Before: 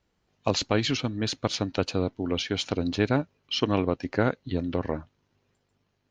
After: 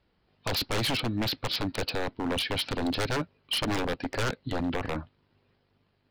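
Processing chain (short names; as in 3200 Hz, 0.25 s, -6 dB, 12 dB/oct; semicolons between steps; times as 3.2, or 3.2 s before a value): downsampling 11025 Hz; wavefolder -25.5 dBFS; gain +3 dB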